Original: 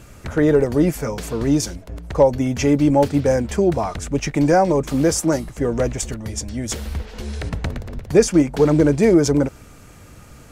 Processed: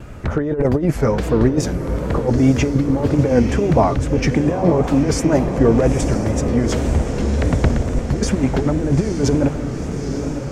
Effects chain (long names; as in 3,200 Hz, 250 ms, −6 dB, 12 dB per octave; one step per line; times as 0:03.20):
compressor whose output falls as the input rises −19 dBFS, ratio −0.5
on a send: feedback delay with all-pass diffusion 914 ms, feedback 66%, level −7.5 dB
on the sum: tape wow and flutter 73 cents
low-pass filter 1,500 Hz 6 dB per octave
0:03.95–0:05.08: multiband upward and downward expander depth 40%
level +5 dB